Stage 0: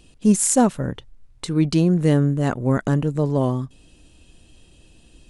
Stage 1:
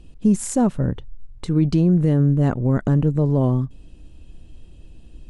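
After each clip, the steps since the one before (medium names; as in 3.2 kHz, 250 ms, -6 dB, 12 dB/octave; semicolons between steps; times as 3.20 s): tilt EQ -2.5 dB/octave; loudness maximiser +6 dB; trim -8 dB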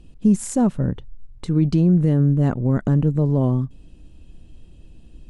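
peaking EQ 190 Hz +3 dB 1.2 oct; trim -2 dB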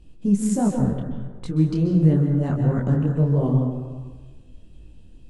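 plate-style reverb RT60 1.3 s, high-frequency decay 0.45×, pre-delay 120 ms, DRR 3.5 dB; detune thickener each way 50 cents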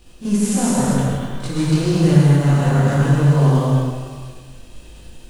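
formants flattened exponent 0.6; pre-echo 36 ms -12.5 dB; gated-style reverb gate 280 ms flat, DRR -4 dB; trim -1.5 dB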